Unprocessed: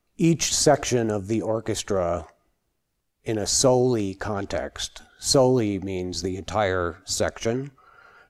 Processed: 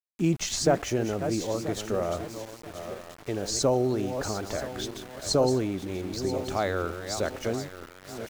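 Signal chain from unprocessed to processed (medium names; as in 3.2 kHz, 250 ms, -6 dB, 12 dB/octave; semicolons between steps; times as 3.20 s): backward echo that repeats 491 ms, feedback 56%, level -9 dB; treble shelf 9.9 kHz -12 dB; small samples zeroed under -35.5 dBFS; trim -5 dB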